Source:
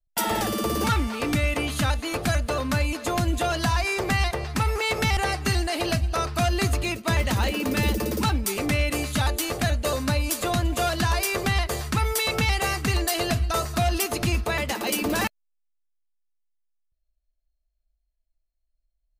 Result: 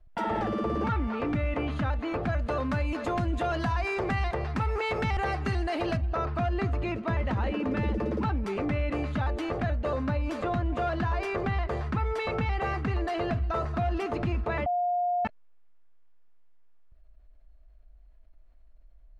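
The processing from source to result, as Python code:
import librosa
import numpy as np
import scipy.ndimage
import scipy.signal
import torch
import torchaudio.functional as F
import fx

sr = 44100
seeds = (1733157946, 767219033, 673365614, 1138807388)

y = fx.peak_eq(x, sr, hz=14000.0, db=14.0, octaves=1.9, at=(2.39, 5.97))
y = fx.edit(y, sr, fx.bleep(start_s=14.66, length_s=0.59, hz=710.0, db=-19.5), tone=tone)
y = scipy.signal.sosfilt(scipy.signal.butter(2, 1600.0, 'lowpass', fs=sr, output='sos'), y)
y = fx.env_flatten(y, sr, amount_pct=50)
y = F.gain(torch.from_numpy(y), -6.0).numpy()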